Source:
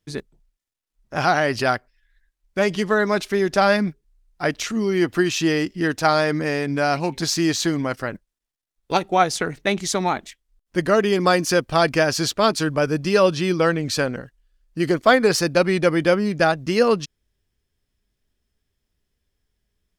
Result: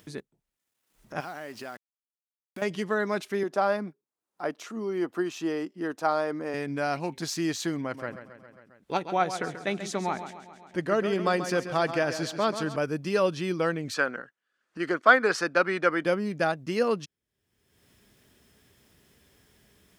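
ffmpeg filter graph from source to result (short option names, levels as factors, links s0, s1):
-filter_complex "[0:a]asettb=1/sr,asplit=3[s0][s1][s2];[s0]atrim=end=1.204[s3];[s1]atrim=start=1.2:end=2.62,asetpts=PTS-STARTPTS,afade=t=in:d=0.004:c=qsin,afade=t=out:st=1.416:d=0.004:c=qsin,lowshelf=f=150:t=q:w=1.5:g=-6,acompressor=threshold=0.0282:ratio=3:attack=3.2:release=140:knee=1:detection=peak,acrusher=bits=6:mix=0:aa=0.5[s4];[s2]atrim=start=2.616[s5];[s3][s4]acrossfade=d=0.004:c1=hsin:c2=qsin[s6];[s6][s5]acrossfade=d=0.004:c1=qsin:c2=hsin,asettb=1/sr,asplit=3[s7][s8][s9];[s7]atrim=end=3.434[s10];[s8]atrim=start=3.43:end=6.54,asetpts=PTS-STARTPTS,afade=t=in:d=0.004:c=qsin,afade=t=out:st=3.106:d=0.004:c=qsin,highpass=250,highshelf=f=1500:t=q:w=1.5:g=-6[s11];[s9]atrim=start=6.536[s12];[s10][s11]acrossfade=d=0.004:c1=hsin:c2=qsin[s13];[s13][s12]acrossfade=d=0.004:c1=qsin:c2=hsin,asettb=1/sr,asplit=3[s14][s15][s16];[s14]atrim=end=7.814[s17];[s15]atrim=start=7.81:end=12.76,asetpts=PTS-STARTPTS,afade=t=in:d=0.004:c=qsin,afade=t=out:st=4.946:d=0.004:c=qsin,highshelf=f=9100:g=-10.5,aecho=1:1:135|270|405|540|675:0.299|0.143|0.0688|0.033|0.0158,atrim=end_sample=218295[s18];[s16]atrim=start=12.756[s19];[s17][s18]acrossfade=d=0.004:c1=hsin:c2=qsin[s20];[s20][s19]acrossfade=d=0.004:c1=qsin:c2=hsin,asettb=1/sr,asplit=3[s21][s22][s23];[s21]atrim=end=13.944[s24];[s22]atrim=start=13.94:end=16.05,asetpts=PTS-STARTPTS,afade=t=in:d=0.004:c=qsin,afade=t=out:st=2.106:d=0.004:c=qsin,highpass=250,lowpass=7100,equalizer=f=1400:t=o:w=0.83:g=11[s25];[s23]atrim=start=16.046[s26];[s24][s25]acrossfade=d=0.004:c1=hsin:c2=qsin[s27];[s27][s26]acrossfade=d=0.004:c1=qsin:c2=hsin,highpass=120,acompressor=mode=upward:threshold=0.0282:ratio=2.5,equalizer=f=4800:t=o:w=1:g=-3.5,volume=0.398"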